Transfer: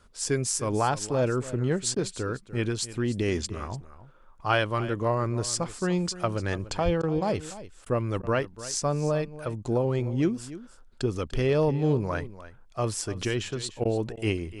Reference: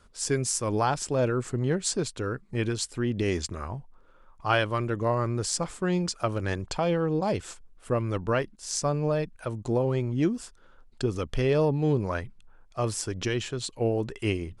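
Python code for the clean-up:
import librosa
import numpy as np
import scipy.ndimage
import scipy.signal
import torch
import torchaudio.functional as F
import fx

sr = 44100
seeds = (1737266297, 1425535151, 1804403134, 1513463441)

y = fx.highpass(x, sr, hz=140.0, slope=24, at=(6.84, 6.96), fade=0.02)
y = fx.fix_interpolate(y, sr, at_s=(1.95, 7.02, 7.85, 8.22, 13.84, 14.16), length_ms=11.0)
y = fx.fix_echo_inverse(y, sr, delay_ms=295, level_db=-15.5)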